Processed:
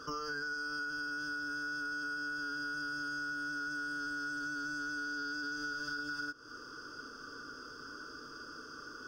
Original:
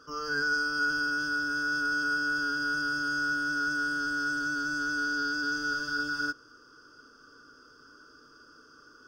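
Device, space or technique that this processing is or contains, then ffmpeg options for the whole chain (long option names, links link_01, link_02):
serial compression, leveller first: -af "acompressor=threshold=-32dB:ratio=2.5,acompressor=threshold=-44dB:ratio=8,volume=7dB"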